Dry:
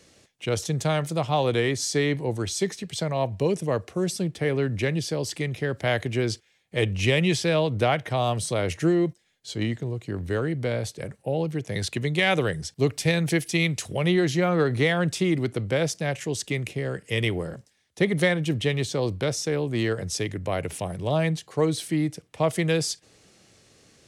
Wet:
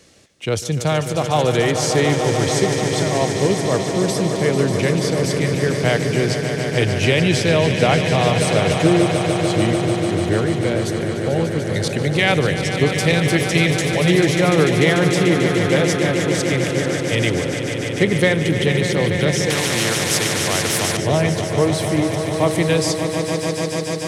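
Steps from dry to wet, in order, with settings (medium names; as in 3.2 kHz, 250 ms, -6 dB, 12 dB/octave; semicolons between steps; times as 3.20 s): echo with a slow build-up 147 ms, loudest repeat 5, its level -9.5 dB; 19.50–20.97 s: spectrum-flattening compressor 2:1; trim +5 dB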